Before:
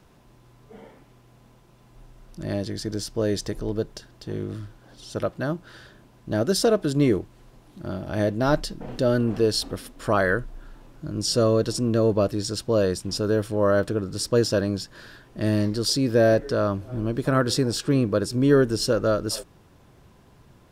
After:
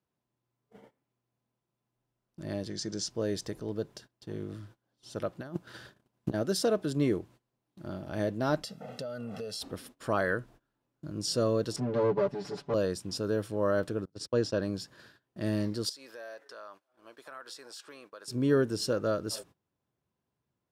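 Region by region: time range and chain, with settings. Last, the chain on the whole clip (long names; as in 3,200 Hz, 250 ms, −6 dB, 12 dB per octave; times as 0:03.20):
0:02.70–0:03.10: low-pass with resonance 6,500 Hz, resonance Q 2.5 + comb filter 5.5 ms, depth 33%
0:05.41–0:06.34: high-shelf EQ 8,200 Hz +2.5 dB + compressor whose output falls as the input rises −33 dBFS + transient designer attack +10 dB, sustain −6 dB
0:08.63–0:09.61: high-pass filter 170 Hz + comb filter 1.5 ms, depth 95% + downward compressor 10 to 1, threshold −27 dBFS
0:11.76–0:12.74: lower of the sound and its delayed copy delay 5 ms + head-to-tape spacing loss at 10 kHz 21 dB + comb filter 7 ms, depth 87%
0:14.05–0:14.62: noise gate −30 dBFS, range −34 dB + high-frequency loss of the air 68 metres
0:15.89–0:18.28: Chebyshev high-pass filter 940 Hz + downward compressor 2.5 to 1, threshold −39 dBFS
whole clip: high-pass filter 90 Hz; noise gate −44 dBFS, range −22 dB; level −7.5 dB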